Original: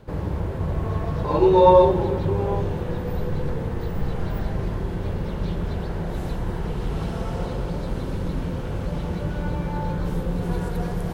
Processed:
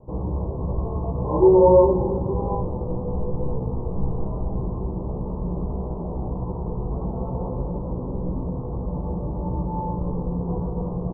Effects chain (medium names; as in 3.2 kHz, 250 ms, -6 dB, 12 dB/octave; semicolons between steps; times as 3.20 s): steep low-pass 1.1 kHz 72 dB/octave; doubling 16 ms -2 dB; trim -2 dB